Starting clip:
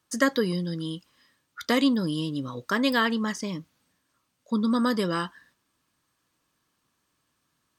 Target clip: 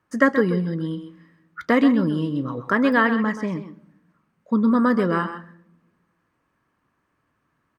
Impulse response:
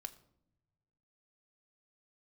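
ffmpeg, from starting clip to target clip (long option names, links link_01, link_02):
-filter_complex "[0:a]firequalizer=gain_entry='entry(1900,0);entry(3500,-16);entry(7100,-18)':delay=0.05:min_phase=1,asplit=2[link_01][link_02];[1:a]atrim=start_sample=2205,adelay=129[link_03];[link_02][link_03]afir=irnorm=-1:irlink=0,volume=-6dB[link_04];[link_01][link_04]amix=inputs=2:normalize=0,volume=5.5dB"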